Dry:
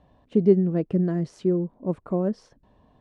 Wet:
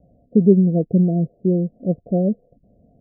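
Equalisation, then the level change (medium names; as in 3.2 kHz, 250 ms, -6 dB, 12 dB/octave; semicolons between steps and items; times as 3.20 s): rippled Chebyshev low-pass 720 Hz, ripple 6 dB; +7.5 dB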